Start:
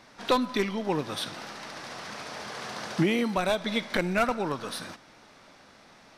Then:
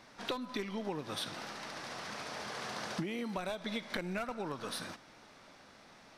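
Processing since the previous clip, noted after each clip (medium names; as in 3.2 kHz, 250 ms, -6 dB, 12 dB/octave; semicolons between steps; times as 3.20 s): compression 16:1, threshold -30 dBFS, peak gain reduction 13 dB; trim -3.5 dB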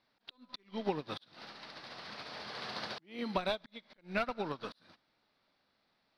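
resonant high shelf 5.6 kHz -8.5 dB, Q 3; slow attack 254 ms; upward expansion 2.5:1, over -52 dBFS; trim +6.5 dB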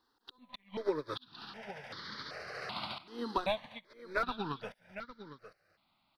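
delay 807 ms -12.5 dB; stepped phaser 2.6 Hz 620–2600 Hz; trim +4 dB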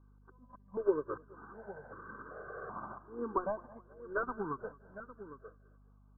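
rippled Chebyshev low-pass 1.6 kHz, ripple 9 dB; hum 50 Hz, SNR 21 dB; modulated delay 213 ms, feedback 43%, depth 96 cents, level -22 dB; trim +4 dB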